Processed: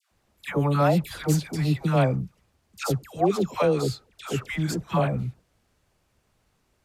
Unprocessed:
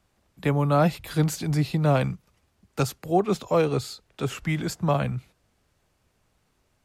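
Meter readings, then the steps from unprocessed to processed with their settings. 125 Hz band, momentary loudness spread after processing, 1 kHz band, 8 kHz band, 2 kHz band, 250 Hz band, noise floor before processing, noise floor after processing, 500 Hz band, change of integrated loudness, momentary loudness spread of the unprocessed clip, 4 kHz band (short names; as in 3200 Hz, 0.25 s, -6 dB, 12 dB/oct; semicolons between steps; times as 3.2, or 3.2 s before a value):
0.0 dB, 10 LU, 0.0 dB, 0.0 dB, 0.0 dB, 0.0 dB, -70 dBFS, -70 dBFS, 0.0 dB, 0.0 dB, 10 LU, 0.0 dB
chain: dispersion lows, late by 0.115 s, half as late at 980 Hz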